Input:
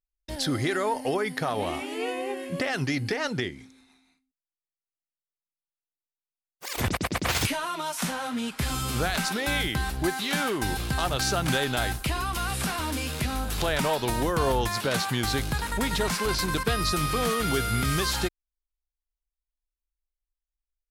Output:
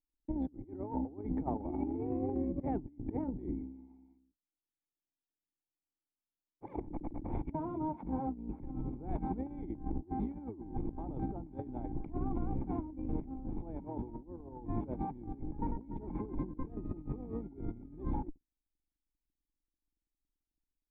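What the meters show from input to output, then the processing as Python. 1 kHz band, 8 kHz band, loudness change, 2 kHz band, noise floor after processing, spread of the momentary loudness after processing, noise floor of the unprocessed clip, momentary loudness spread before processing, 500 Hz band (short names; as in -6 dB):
-14.5 dB, under -40 dB, -12.5 dB, under -35 dB, under -85 dBFS, 8 LU, under -85 dBFS, 5 LU, -14.0 dB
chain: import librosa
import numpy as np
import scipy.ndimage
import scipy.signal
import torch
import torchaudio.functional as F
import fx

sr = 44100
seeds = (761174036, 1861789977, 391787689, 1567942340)

y = fx.octave_divider(x, sr, octaves=2, level_db=4.0)
y = fx.formant_cascade(y, sr, vowel='u')
y = fx.over_compress(y, sr, threshold_db=-42.0, ratio=-0.5)
y = F.gain(torch.from_numpy(y), 4.5).numpy()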